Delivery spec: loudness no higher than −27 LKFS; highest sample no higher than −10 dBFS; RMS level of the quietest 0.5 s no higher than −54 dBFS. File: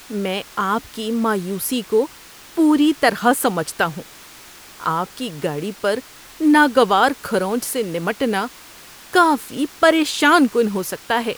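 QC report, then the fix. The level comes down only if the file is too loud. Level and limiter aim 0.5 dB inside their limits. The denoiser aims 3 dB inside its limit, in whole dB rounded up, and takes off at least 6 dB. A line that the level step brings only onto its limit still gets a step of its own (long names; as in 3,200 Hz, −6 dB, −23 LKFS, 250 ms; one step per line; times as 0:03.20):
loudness −19.0 LKFS: out of spec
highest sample −2.0 dBFS: out of spec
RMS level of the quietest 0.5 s −42 dBFS: out of spec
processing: broadband denoise 7 dB, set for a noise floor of −42 dBFS
level −8.5 dB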